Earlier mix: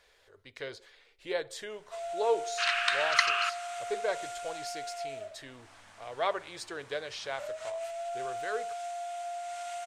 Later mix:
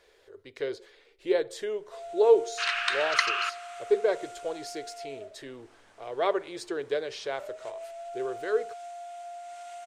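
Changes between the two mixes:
first sound -6.5 dB; master: add bell 380 Hz +12.5 dB 0.93 oct

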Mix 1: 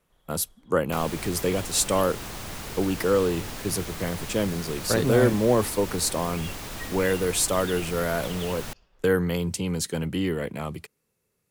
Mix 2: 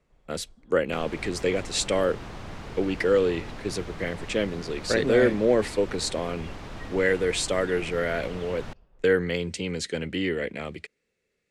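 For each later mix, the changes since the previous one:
speech: add graphic EQ 125/500/1000/2000/4000/8000 Hz -10/+4/-9/+11/+6/+10 dB; first sound: add tilt shelf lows +5 dB, about 1100 Hz; master: add tape spacing loss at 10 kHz 22 dB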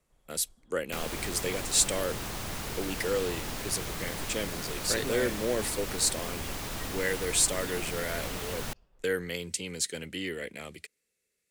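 speech -10.0 dB; first sound -6.0 dB; master: remove tape spacing loss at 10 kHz 22 dB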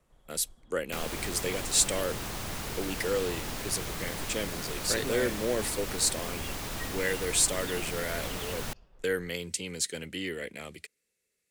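first sound +6.0 dB

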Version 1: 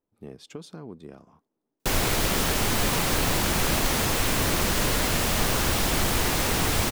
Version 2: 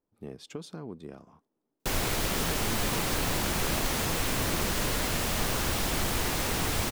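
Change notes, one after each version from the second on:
background -5.0 dB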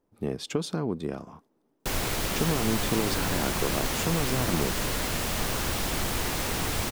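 speech +11.0 dB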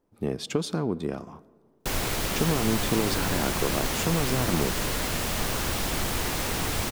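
reverb: on, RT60 1.8 s

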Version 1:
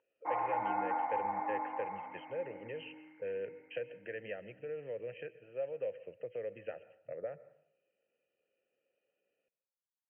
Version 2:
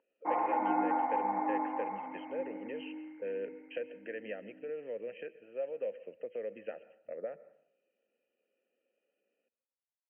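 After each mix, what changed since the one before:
background: add low shelf 490 Hz +10 dB; master: add resonant low shelf 170 Hz -9 dB, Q 3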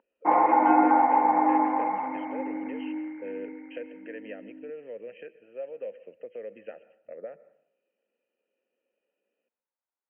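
background +11.0 dB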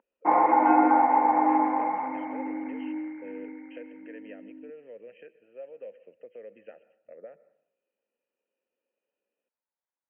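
speech -5.5 dB

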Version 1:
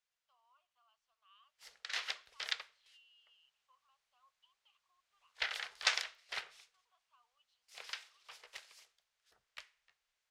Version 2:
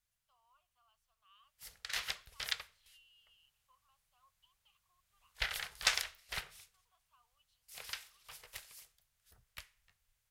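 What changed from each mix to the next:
master: remove three-band isolator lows -22 dB, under 290 Hz, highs -21 dB, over 7000 Hz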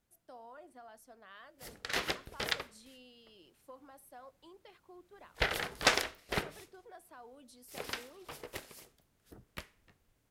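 speech: remove double band-pass 1800 Hz, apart 1.3 oct; master: remove passive tone stack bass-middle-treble 10-0-10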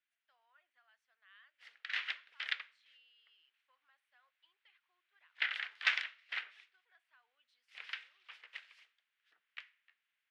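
speech -4.5 dB; master: add Butterworth band-pass 2300 Hz, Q 1.3

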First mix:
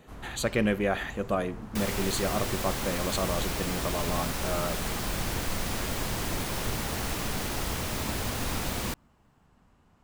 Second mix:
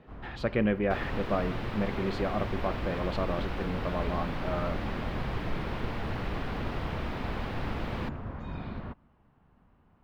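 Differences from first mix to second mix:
speech: remove Butterworth band-stop 5200 Hz, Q 3.8; second sound: entry -0.85 s; master: add air absorption 380 m

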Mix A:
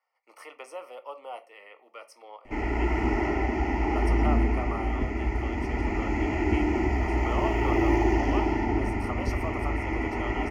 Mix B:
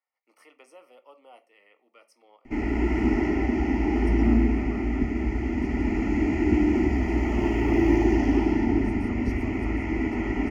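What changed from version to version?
speech -8.5 dB; master: add graphic EQ 250/500/1000 Hz +9/-3/-5 dB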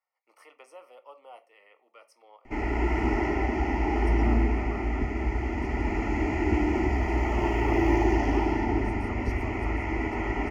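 master: add graphic EQ 250/500/1000 Hz -9/+3/+5 dB

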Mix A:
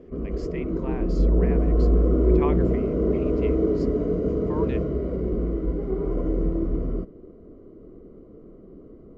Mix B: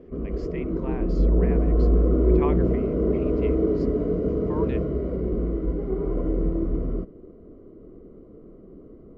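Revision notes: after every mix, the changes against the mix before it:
master: add air absorption 89 m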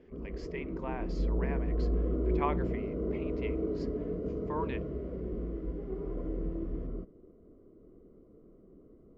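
background -11.0 dB

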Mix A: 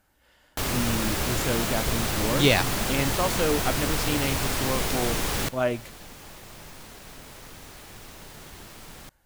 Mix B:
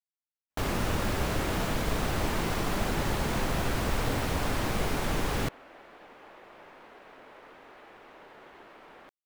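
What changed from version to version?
speech: muted; second sound: add three-band isolator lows -23 dB, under 300 Hz, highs -18 dB, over 3200 Hz; master: add high shelf 3000 Hz -11.5 dB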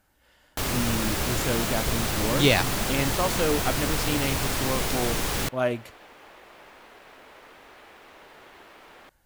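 speech: unmuted; master: add high shelf 3000 Hz +11.5 dB

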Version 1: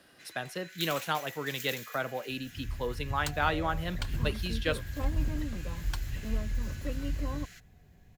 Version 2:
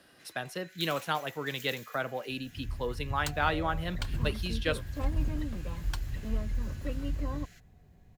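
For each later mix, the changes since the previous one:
first sound -6.0 dB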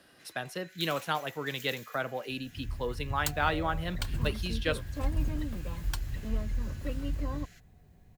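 second sound: add high shelf 8700 Hz +12 dB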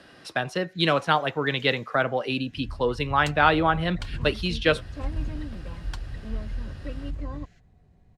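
speech +10.0 dB; first sound -5.0 dB; master: add air absorption 76 m

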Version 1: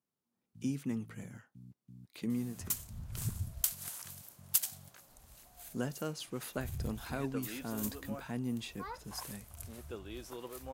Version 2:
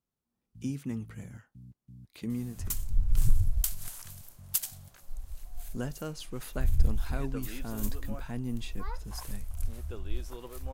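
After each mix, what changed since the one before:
master: remove HPF 140 Hz 12 dB/oct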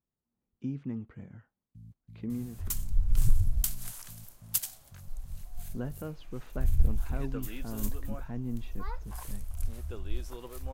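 speech: add tape spacing loss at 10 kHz 36 dB; first sound: entry +1.20 s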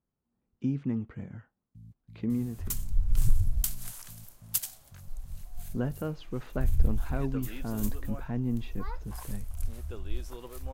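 speech +5.5 dB

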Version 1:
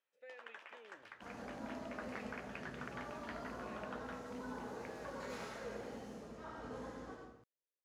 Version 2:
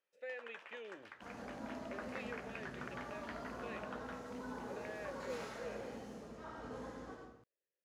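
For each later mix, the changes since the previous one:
speech +9.0 dB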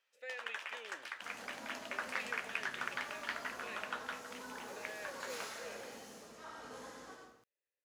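first sound +7.5 dB; master: add tilt +3.5 dB/oct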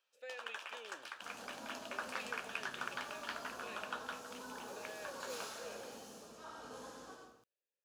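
master: add bell 2000 Hz -12 dB 0.33 oct

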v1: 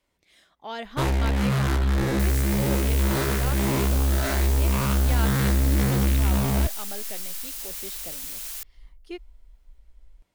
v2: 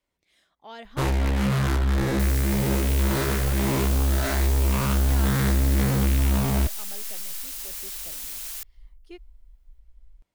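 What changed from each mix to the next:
speech -7.0 dB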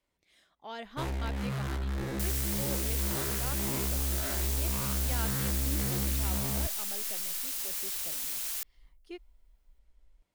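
first sound -11.0 dB

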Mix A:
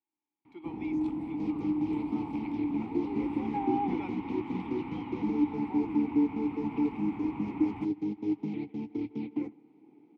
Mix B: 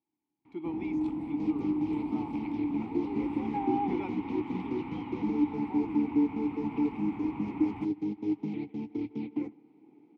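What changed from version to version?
speech: remove HPF 790 Hz 6 dB/oct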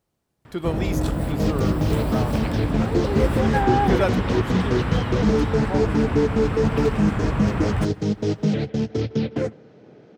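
speech: add high shelf 8800 Hz +10 dB; master: remove vowel filter u

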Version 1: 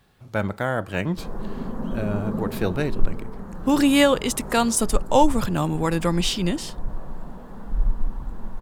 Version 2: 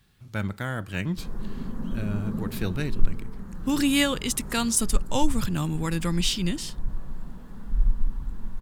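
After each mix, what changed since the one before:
master: add bell 650 Hz -12.5 dB 2 oct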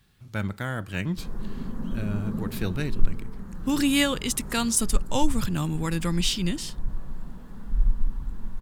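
none

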